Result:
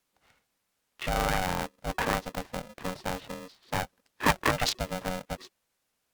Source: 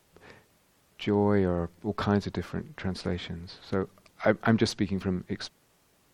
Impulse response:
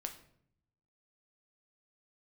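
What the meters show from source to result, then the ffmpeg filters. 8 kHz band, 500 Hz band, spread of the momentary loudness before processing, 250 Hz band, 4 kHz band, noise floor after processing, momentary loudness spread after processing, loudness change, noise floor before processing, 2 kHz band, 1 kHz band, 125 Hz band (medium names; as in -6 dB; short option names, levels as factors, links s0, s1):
+8.5 dB, -5.0 dB, 13 LU, -8.5 dB, +4.0 dB, -79 dBFS, 14 LU, -1.5 dB, -66 dBFS, +4.0 dB, +5.0 dB, -5.5 dB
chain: -filter_complex "[0:a]afwtdn=0.0112,tiltshelf=f=930:g=-4,acrossover=split=390|3000[s0][s1][s2];[s0]acompressor=threshold=0.0251:ratio=5[s3];[s3][s1][s2]amix=inputs=3:normalize=0,aeval=exprs='val(0)*sgn(sin(2*PI*370*n/s))':c=same,volume=1.26"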